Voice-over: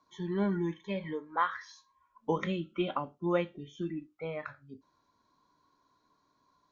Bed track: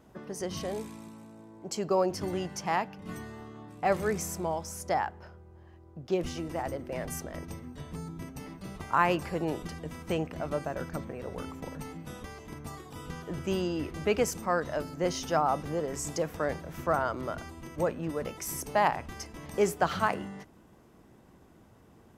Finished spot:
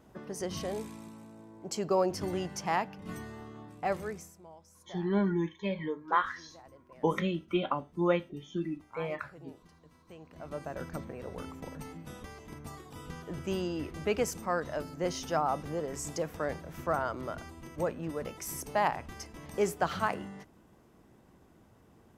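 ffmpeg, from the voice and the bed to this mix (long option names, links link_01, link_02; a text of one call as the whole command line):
ffmpeg -i stem1.wav -i stem2.wav -filter_complex "[0:a]adelay=4750,volume=2dB[link_01];[1:a]volume=16.5dB,afade=type=out:start_time=3.6:duration=0.73:silence=0.105925,afade=type=in:start_time=10.2:duration=0.65:silence=0.133352[link_02];[link_01][link_02]amix=inputs=2:normalize=0" out.wav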